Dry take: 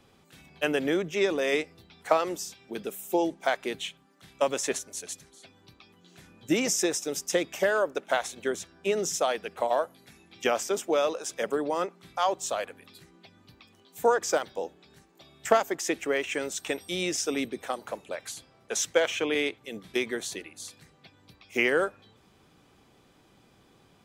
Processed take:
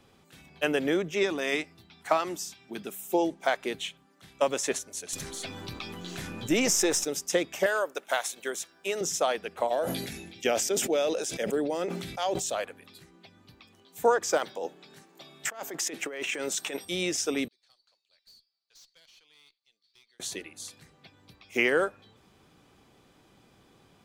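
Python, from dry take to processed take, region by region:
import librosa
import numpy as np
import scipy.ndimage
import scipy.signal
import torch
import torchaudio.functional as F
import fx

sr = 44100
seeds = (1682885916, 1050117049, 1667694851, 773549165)

y = fx.chain(x, sr, fx.highpass(hz=77.0, slope=12),
    fx.peak_eq(hz=490.0, db=-11.5, octaves=0.37), at=(1.23, 3.1))
y = fx.chain(y, sr, fx.halfwave_gain(db=-3.0),
    fx.env_flatten(amount_pct=50), at=(5.13, 7.05))
y = fx.chain(y, sr, fx.highpass(hz=650.0, slope=6),
    fx.high_shelf(hz=9300.0, db=11.5), at=(7.66, 9.01))
y = fx.chain(y, sr, fx.peak_eq(hz=1100.0, db=-12.0, octaves=0.73),
    fx.sustainer(db_per_s=40.0), at=(9.69, 12.55))
y = fx.chain(y, sr, fx.highpass(hz=120.0, slope=24),
    fx.over_compress(threshold_db=-34.0, ratio=-1.0),
    fx.low_shelf(hz=200.0, db=-4.5), at=(14.39, 16.85))
y = fx.chain(y, sr, fx.bandpass_q(hz=4500.0, q=17.0),
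    fx.tube_stage(drive_db=52.0, bias=0.3), at=(17.48, 20.2))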